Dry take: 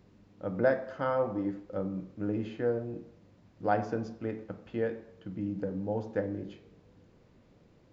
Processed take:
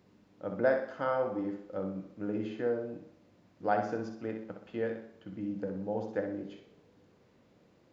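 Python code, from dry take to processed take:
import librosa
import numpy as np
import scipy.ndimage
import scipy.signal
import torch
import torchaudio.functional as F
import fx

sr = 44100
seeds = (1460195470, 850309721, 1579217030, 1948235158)

p1 = fx.highpass(x, sr, hz=210.0, slope=6)
p2 = p1 + fx.room_flutter(p1, sr, wall_m=10.8, rt60_s=0.5, dry=0)
y = p2 * librosa.db_to_amplitude(-1.0)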